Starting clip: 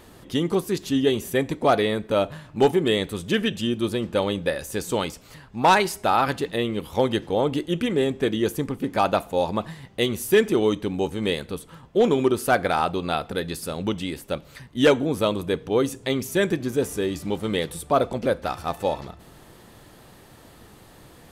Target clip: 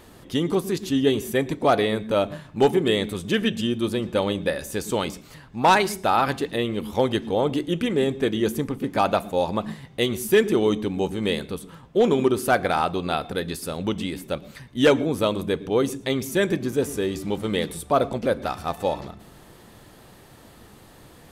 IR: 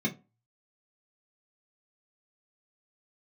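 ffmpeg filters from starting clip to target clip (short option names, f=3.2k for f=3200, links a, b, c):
-filter_complex "[0:a]asplit=2[a][b];[1:a]atrim=start_sample=2205,adelay=110[c];[b][c]afir=irnorm=-1:irlink=0,volume=-27.5dB[d];[a][d]amix=inputs=2:normalize=0"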